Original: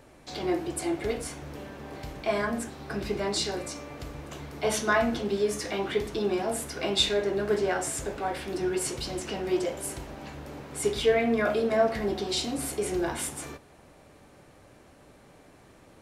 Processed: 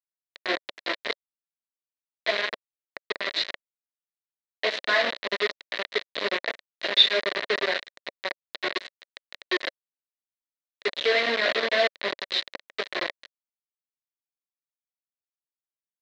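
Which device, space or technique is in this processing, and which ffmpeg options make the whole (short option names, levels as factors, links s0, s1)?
hand-held game console: -af "lowpass=11000,adynamicequalizer=threshold=0.00282:dfrequency=3500:dqfactor=4.3:tfrequency=3500:tqfactor=4.3:attack=5:release=100:ratio=0.375:range=2:mode=boostabove:tftype=bell,acrusher=bits=3:mix=0:aa=0.000001,highpass=450,equalizer=f=570:t=q:w=4:g=5,equalizer=f=830:t=q:w=4:g=-8,equalizer=f=1300:t=q:w=4:g=-5,equalizer=f=1900:t=q:w=4:g=9,equalizer=f=4000:t=q:w=4:g=9,lowpass=f=4200:w=0.5412,lowpass=f=4200:w=1.3066"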